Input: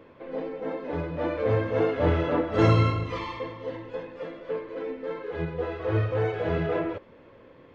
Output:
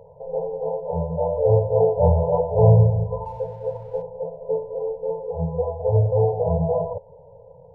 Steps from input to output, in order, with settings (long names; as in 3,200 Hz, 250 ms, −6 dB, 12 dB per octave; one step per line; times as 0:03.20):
linear-phase brick-wall low-pass 1,000 Hz
0:03.25–0:04.02: slack as between gear wheels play −59.5 dBFS
brick-wall band-stop 180–430 Hz
level +7.5 dB